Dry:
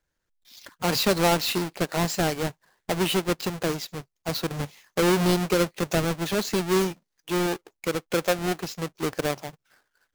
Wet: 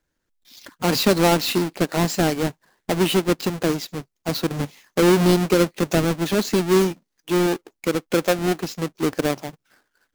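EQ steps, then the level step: bell 270 Hz +7 dB 0.94 oct; +2.5 dB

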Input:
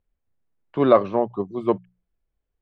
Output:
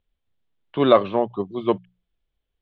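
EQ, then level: synth low-pass 3400 Hz, resonance Q 4; 0.0 dB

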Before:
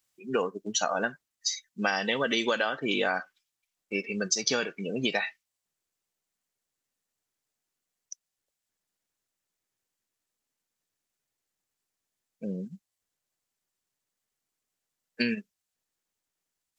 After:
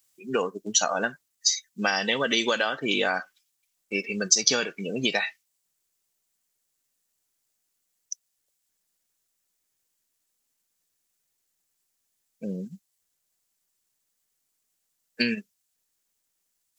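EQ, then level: high shelf 4700 Hz +10 dB; +1.5 dB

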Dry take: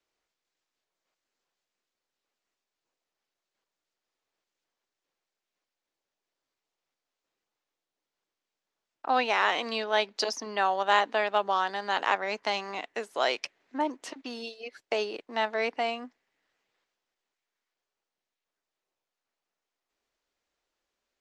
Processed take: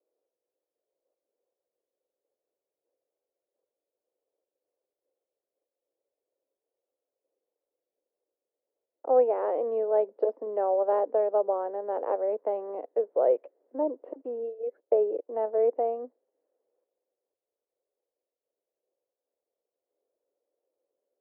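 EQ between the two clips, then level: HPF 300 Hz 24 dB/oct; synth low-pass 520 Hz, resonance Q 4.9; air absorption 410 m; 0.0 dB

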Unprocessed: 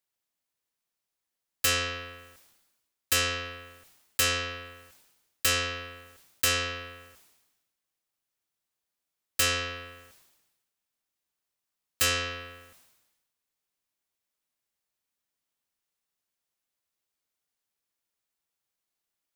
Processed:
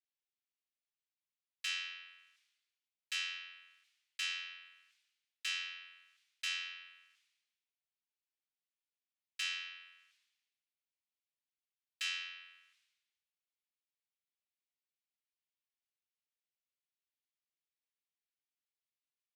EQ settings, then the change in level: ladder high-pass 1900 Hz, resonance 25%; tape spacing loss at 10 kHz 21 dB; +1.5 dB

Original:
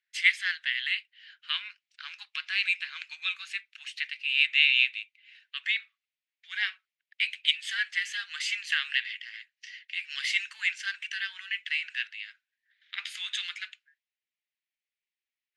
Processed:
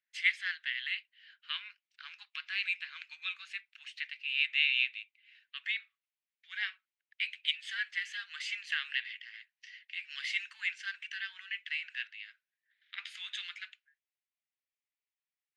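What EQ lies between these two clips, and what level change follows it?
HPF 750 Hz 24 dB/oct; high shelf 6500 Hz -11.5 dB; -5.0 dB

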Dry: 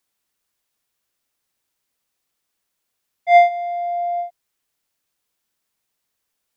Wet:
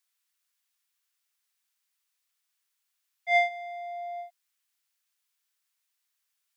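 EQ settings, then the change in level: HPF 1300 Hz 12 dB/oct; -3.0 dB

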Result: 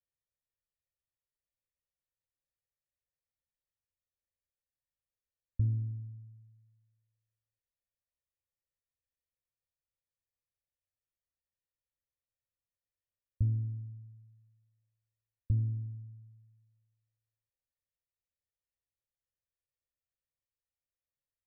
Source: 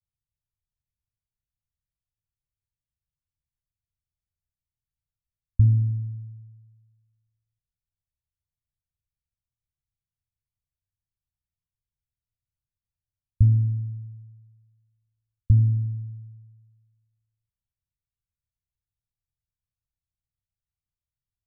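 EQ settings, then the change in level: dynamic EQ 320 Hz, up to +6 dB, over -53 dBFS, Q 6.2; vocal tract filter e; +7.5 dB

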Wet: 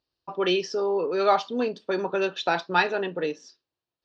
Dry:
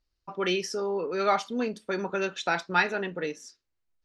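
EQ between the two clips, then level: speaker cabinet 140–4800 Hz, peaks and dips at 210 Hz -8 dB, 1400 Hz -5 dB, 2100 Hz -10 dB; +5.0 dB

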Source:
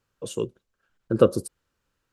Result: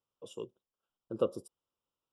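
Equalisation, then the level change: polynomial smoothing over 25 samples; Butterworth band-stop 1900 Hz, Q 0.88; tilt +3.5 dB/oct; -9.0 dB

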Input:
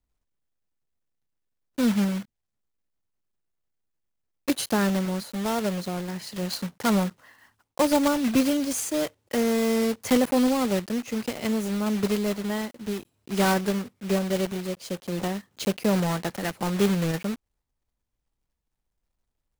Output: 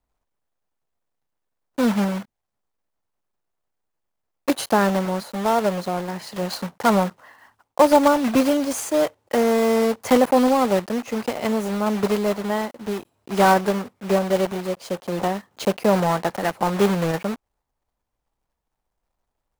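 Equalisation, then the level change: bell 810 Hz +10.5 dB 2 oct; 0.0 dB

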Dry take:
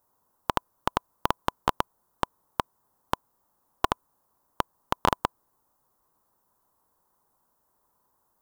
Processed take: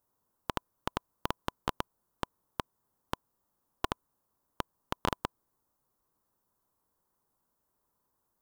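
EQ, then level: bell 890 Hz -6.5 dB 1.4 oct; high shelf 6500 Hz -3.5 dB; -4.0 dB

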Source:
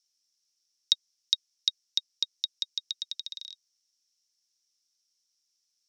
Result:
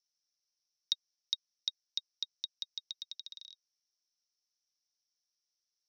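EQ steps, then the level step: Chebyshev band-pass 330–6200 Hz, order 5; -8.5 dB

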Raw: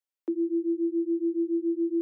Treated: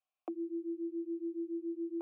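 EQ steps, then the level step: vowel filter a; bell 380 Hz -9 dB 0.77 oct; +16.0 dB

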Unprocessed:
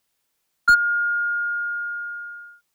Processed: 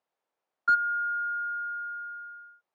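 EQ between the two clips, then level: band-pass 660 Hz, Q 1.3; 0.0 dB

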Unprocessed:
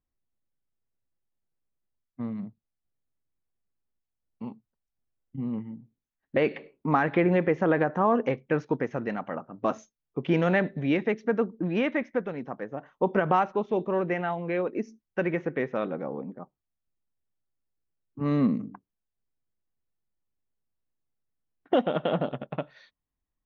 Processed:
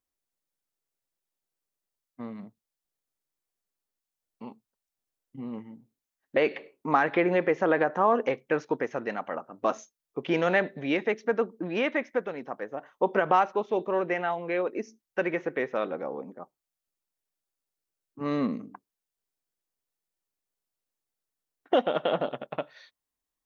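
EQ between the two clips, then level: tone controls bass -13 dB, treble +5 dB; +1.5 dB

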